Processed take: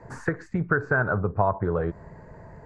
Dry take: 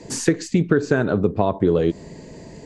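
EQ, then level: FFT filter 110 Hz 0 dB, 280 Hz -15 dB, 790 Hz 0 dB, 1.5 kHz +5 dB, 3 kHz -25 dB; 0.0 dB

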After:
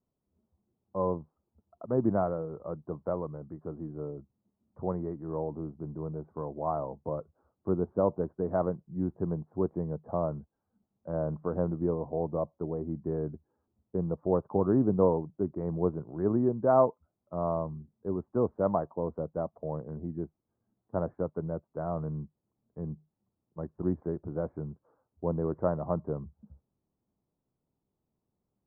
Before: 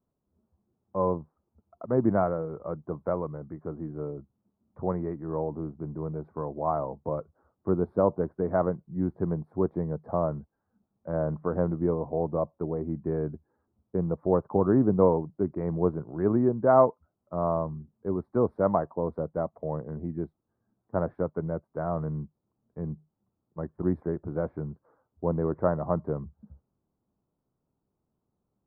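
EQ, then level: low-pass 1.3 kHz 12 dB/octave; -3.0 dB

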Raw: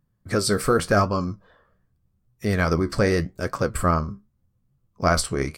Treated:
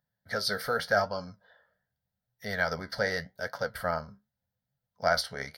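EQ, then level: high-pass 700 Hz 6 dB/octave; peaking EQ 9.2 kHz -3 dB 1.6 oct; static phaser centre 1.7 kHz, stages 8; 0.0 dB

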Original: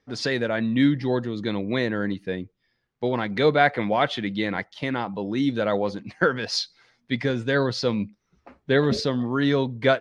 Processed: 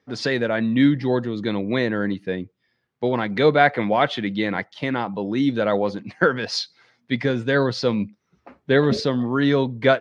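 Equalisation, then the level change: high-pass 92 Hz; treble shelf 5.8 kHz -7 dB; +3.0 dB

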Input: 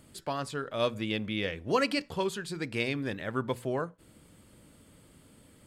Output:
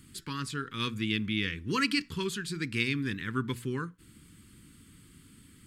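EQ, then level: Butterworth band-stop 650 Hz, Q 0.69; +3.0 dB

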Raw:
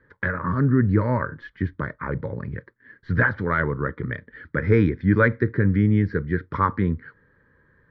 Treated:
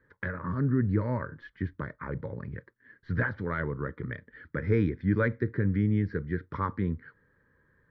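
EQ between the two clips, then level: dynamic bell 1.3 kHz, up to -4 dB, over -31 dBFS, Q 0.82; -7.0 dB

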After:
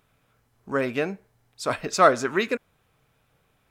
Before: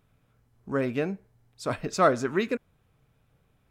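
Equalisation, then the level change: bass shelf 360 Hz -10.5 dB; +6.5 dB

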